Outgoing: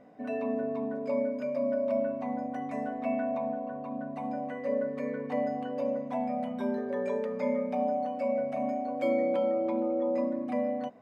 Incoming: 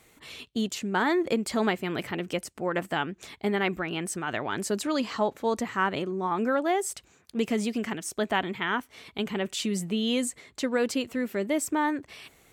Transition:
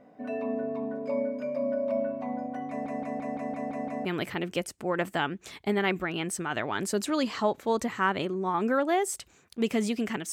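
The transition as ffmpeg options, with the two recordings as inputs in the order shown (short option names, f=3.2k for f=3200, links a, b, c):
-filter_complex "[0:a]apad=whole_dur=10.32,atrim=end=10.32,asplit=8[a][b][c][d][e][f][g][h];[a]atrim=end=2.862[i];[b]atrim=start=2.688:end=2.862[j];[c]atrim=start=2.688:end=2.862[k];[d]atrim=start=2.688:end=2.862[l];[e]atrim=start=2.688:end=2.862[m];[f]atrim=start=2.688:end=2.862[n];[g]atrim=start=2.688:end=2.862[o];[h]atrim=start=2.688:end=2.862[p];[1:a]atrim=start=1.818:end=8.09[q];[i][j]acrossfade=d=0.004:c1=hsin:c2=hsin[r];[r][k]acrossfade=d=0.004:c1=hsin:c2=hsin[s];[s][l]acrossfade=d=0.004:c1=hsin:c2=hsin[t];[t][m]acrossfade=d=0.004:c1=hsin:c2=hsin[u];[u][n]acrossfade=d=0.004:c1=hsin:c2=hsin[v];[v][o]acrossfade=d=0.004:c1=hsin:c2=hsin[w];[w][p]acrossfade=d=0.004:c1=hsin:c2=hsin[x];[x][q]acrossfade=d=0.004:c1=hsin:c2=hsin"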